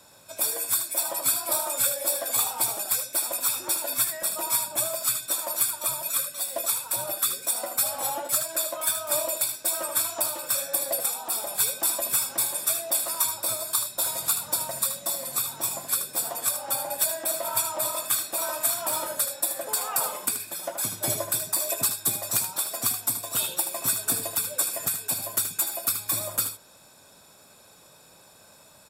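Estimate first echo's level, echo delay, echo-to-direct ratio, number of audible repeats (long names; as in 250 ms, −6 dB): −8.5 dB, 77 ms, −8.5 dB, 1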